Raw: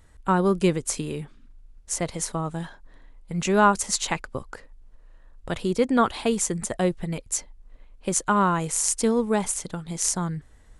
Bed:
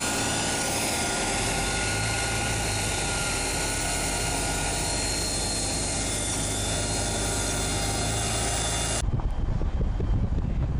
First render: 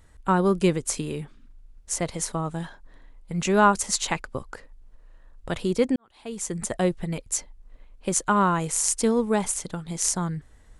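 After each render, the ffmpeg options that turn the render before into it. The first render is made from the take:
-filter_complex "[0:a]asplit=2[s0][s1];[s0]atrim=end=5.96,asetpts=PTS-STARTPTS,afade=t=out:st=5.956:d=0.004:c=hsin[s2];[s1]atrim=start=5.96,asetpts=PTS-STARTPTS,afade=t=in:d=0.67:c=qua[s3];[s2][s3]concat=n=2:v=0:a=1"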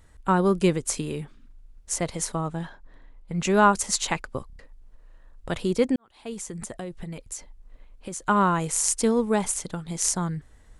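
-filter_complex "[0:a]asettb=1/sr,asplit=3[s0][s1][s2];[s0]atrim=end=2.484[s3];[s1]atrim=start=2.48:end=3.44,asetpts=PTS-STARTPTS,afade=t=in:d=0.004:c=qsin,afade=t=out:st=0.956:d=0.004:c=qsin,lowpass=f=3900:p=1[s4];[s2]atrim=start=3.436[s5];[s3][s4]acrossfade=d=0.004:c1=hsin:c2=qsin[s6];[s6][s5]acrossfade=d=0.004:c1=qsin:c2=hsin,asettb=1/sr,asplit=3[s7][s8][s9];[s7]atrim=end=6.334[s10];[s8]atrim=start=6.33:end=8.22,asetpts=PTS-STARTPTS,afade=t=in:d=0.004:c=qsin,afade=t=out:st=1.886:d=0.004:c=qsin,acompressor=threshold=0.0251:ratio=5:attack=3.2:release=140:knee=1:detection=peak[s11];[s9]atrim=start=8.216[s12];[s10][s11]acrossfade=d=0.004:c1=hsin:c2=qsin[s13];[s13][s12]acrossfade=d=0.004:c1=qsin:c2=hsin,asplit=5[s14][s15][s16][s17][s18];[s14]atrim=end=4.502[s19];[s15]atrim=start=4.468:end=4.502[s20];[s16]atrim=start=4.468:end=4.502[s21];[s17]atrim=start=4.468:end=4.502[s22];[s18]atrim=start=4.588[s23];[s19][s20]acrossfade=d=0.004:c1=hsin:c2=hsin[s24];[s24][s21]acrossfade=d=0.004:c1=hsin:c2=hsin[s25];[s25][s22]acrossfade=d=0.004:c1=hsin:c2=hsin[s26];[s26][s23]acrossfade=d=0.004:c1=hsin:c2=hsin"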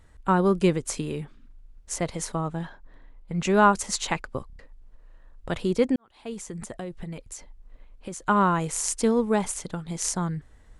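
-af "highshelf=f=6000:g=-6.5"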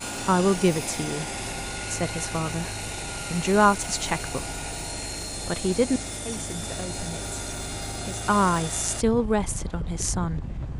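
-filter_complex "[1:a]volume=0.501[s0];[0:a][s0]amix=inputs=2:normalize=0"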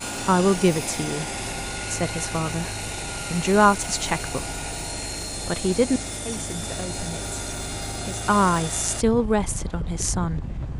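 -af "volume=1.26"

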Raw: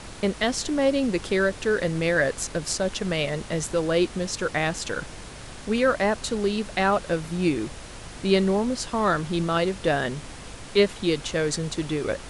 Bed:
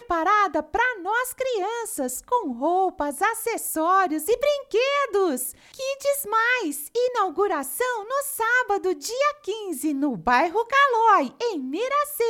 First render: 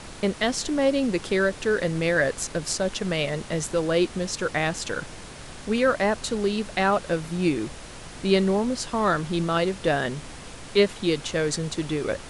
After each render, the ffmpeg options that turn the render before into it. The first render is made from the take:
-af "bandreject=f=50:t=h:w=4,bandreject=f=100:t=h:w=4"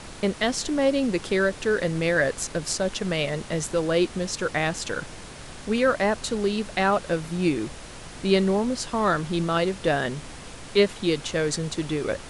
-af anull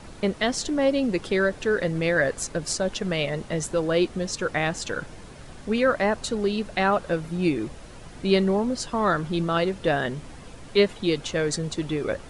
-af "afftdn=nr=8:nf=-41"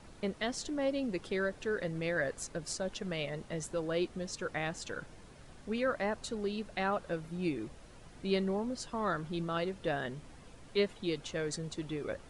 -af "volume=0.282"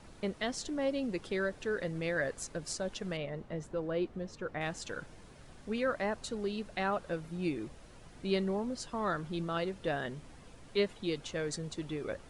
-filter_complex "[0:a]asettb=1/sr,asplit=3[s0][s1][s2];[s0]atrim=end=3.174[s3];[s1]atrim=start=3.17:end=4.61,asetpts=PTS-STARTPTS,afade=t=in:d=0.004:c=qsin,afade=t=out:st=1.436:d=0.004:c=qsin,lowpass=f=1400:p=1[s4];[s2]atrim=start=4.606[s5];[s3][s4]acrossfade=d=0.004:c1=hsin:c2=qsin[s6];[s6][s5]acrossfade=d=0.004:c1=qsin:c2=hsin"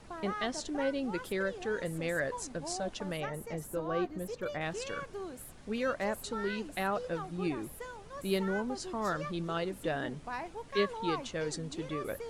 -filter_complex "[1:a]volume=0.1[s0];[0:a][s0]amix=inputs=2:normalize=0"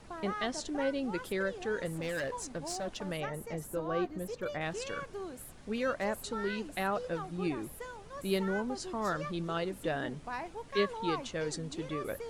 -filter_complex "[0:a]asettb=1/sr,asplit=3[s0][s1][s2];[s0]atrim=end=1.864[s3];[s1]atrim=start=1.86:end=3.07,asetpts=PTS-STARTPTS,afade=t=in:d=0.004:c=qsin,afade=t=out:st=1.206:d=0.004:c=qsin,asoftclip=type=hard:threshold=0.0251[s4];[s2]atrim=start=3.066[s5];[s3][s4]acrossfade=d=0.004:c1=hsin:c2=qsin[s6];[s6][s5]acrossfade=d=0.004:c1=qsin:c2=hsin"

